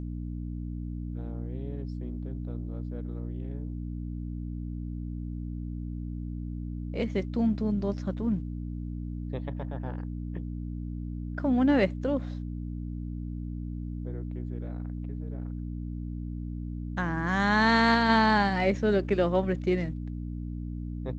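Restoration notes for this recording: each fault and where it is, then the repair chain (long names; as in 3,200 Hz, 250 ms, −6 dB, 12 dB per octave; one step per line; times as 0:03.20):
mains hum 60 Hz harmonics 5 −35 dBFS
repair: hum removal 60 Hz, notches 5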